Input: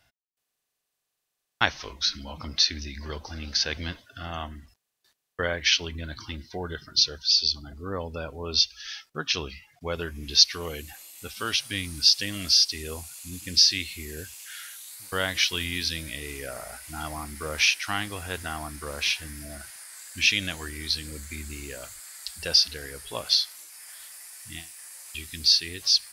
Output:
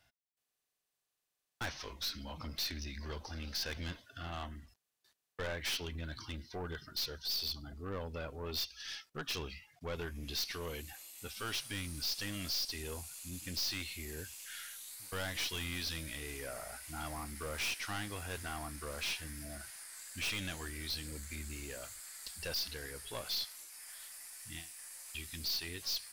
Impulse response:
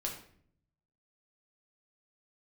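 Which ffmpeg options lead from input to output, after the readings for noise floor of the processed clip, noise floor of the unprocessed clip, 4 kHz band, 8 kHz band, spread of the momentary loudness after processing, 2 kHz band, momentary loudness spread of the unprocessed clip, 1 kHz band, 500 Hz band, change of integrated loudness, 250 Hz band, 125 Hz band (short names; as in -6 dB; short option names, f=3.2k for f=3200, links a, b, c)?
under -85 dBFS, -82 dBFS, -15.5 dB, -11.5 dB, 10 LU, -12.0 dB, 19 LU, -10.0 dB, -9.0 dB, -15.0 dB, -8.0 dB, -6.5 dB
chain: -af "aeval=exprs='(tanh(28.2*val(0)+0.25)-tanh(0.25))/28.2':c=same,volume=-5dB"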